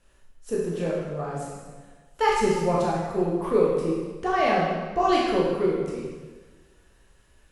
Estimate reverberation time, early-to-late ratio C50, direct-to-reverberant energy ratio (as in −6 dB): 1.4 s, −0.5 dB, −5.5 dB